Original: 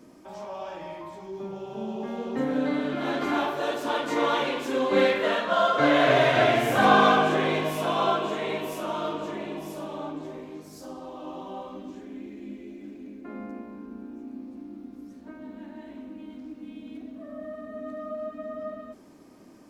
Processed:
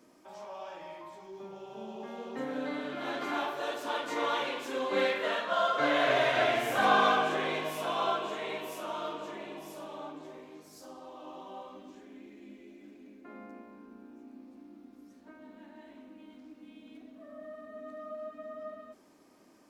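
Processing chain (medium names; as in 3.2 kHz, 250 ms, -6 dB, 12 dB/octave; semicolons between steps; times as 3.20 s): bass shelf 300 Hz -11.5 dB; trim -4.5 dB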